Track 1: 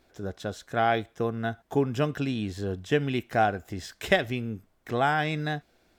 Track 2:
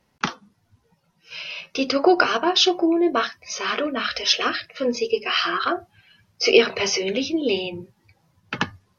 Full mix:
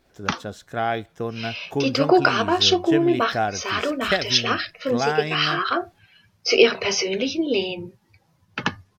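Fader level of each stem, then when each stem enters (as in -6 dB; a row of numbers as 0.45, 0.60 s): 0.0, 0.0 dB; 0.00, 0.05 s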